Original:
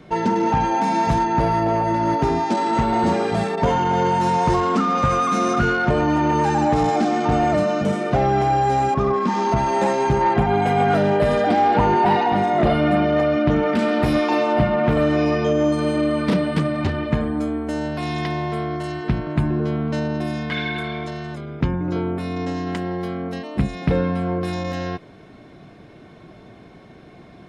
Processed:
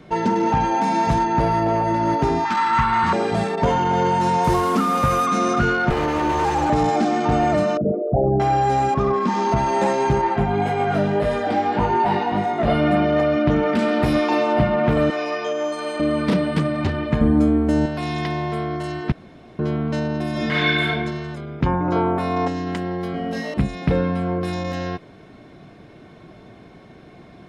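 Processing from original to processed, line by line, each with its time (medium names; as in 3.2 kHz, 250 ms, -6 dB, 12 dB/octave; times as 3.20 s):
2.45–3.13 s: FFT filter 130 Hz 0 dB, 590 Hz -19 dB, 1.1 kHz +12 dB, 7.5 kHz -4 dB
4.44–5.26 s: one-bit delta coder 64 kbps, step -29.5 dBFS
5.90–6.70 s: comb filter that takes the minimum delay 2.4 ms
7.77–8.40 s: resonances exaggerated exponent 3
10.21–12.68 s: chorus 1.7 Hz, delay 17.5 ms, depth 3.2 ms
15.10–16.00 s: high-pass 580 Hz
17.21–17.86 s: bass shelf 400 Hz +11 dB
19.12–19.59 s: room tone
20.31–20.88 s: reverb throw, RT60 1 s, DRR -6.5 dB
21.66–22.48 s: peaking EQ 890 Hz +13 dB 1.5 oct
23.12–23.54 s: flutter echo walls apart 3.1 m, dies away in 1.2 s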